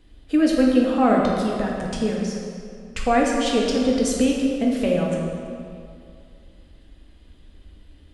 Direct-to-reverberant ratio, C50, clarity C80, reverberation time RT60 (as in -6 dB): -3.0 dB, 0.0 dB, 2.0 dB, 2.4 s